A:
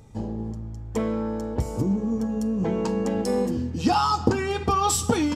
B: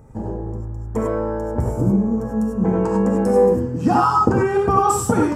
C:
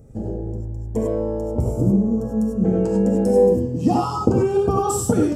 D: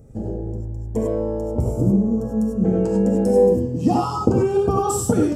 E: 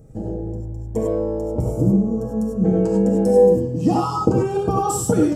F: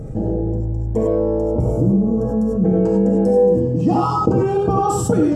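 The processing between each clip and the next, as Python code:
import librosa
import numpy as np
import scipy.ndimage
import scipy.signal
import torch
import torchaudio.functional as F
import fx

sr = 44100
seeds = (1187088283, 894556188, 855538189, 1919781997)

y1 = fx.curve_eq(x, sr, hz=(1500.0, 3700.0, 8500.0), db=(0, -20, -6))
y1 = fx.rev_gated(y1, sr, seeds[0], gate_ms=120, shape='rising', drr_db=-0.5)
y1 = F.gain(torch.from_numpy(y1), 3.5).numpy()
y2 = fx.band_shelf(y1, sr, hz=1400.0, db=-8.5, octaves=1.7)
y2 = fx.filter_lfo_notch(y2, sr, shape='saw_up', hz=0.39, low_hz=930.0, high_hz=2300.0, q=2.5)
y3 = y2
y4 = y3 + 0.37 * np.pad(y3, (int(6.3 * sr / 1000.0), 0))[:len(y3)]
y5 = fx.lowpass(y4, sr, hz=2500.0, slope=6)
y5 = fx.env_flatten(y5, sr, amount_pct=50)
y5 = F.gain(torch.from_numpy(y5), -1.5).numpy()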